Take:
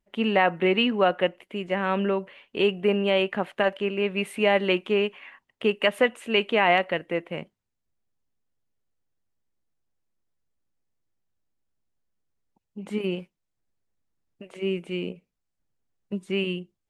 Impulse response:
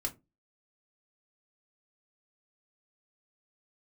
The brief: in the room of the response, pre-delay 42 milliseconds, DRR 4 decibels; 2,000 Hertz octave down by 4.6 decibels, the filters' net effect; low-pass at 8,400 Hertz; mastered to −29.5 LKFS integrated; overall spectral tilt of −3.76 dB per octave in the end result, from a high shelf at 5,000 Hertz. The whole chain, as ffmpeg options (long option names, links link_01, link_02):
-filter_complex "[0:a]lowpass=8400,equalizer=frequency=2000:width_type=o:gain=-4.5,highshelf=frequency=5000:gain=-6.5,asplit=2[link_01][link_02];[1:a]atrim=start_sample=2205,adelay=42[link_03];[link_02][link_03]afir=irnorm=-1:irlink=0,volume=-5.5dB[link_04];[link_01][link_04]amix=inputs=2:normalize=0,volume=-4.5dB"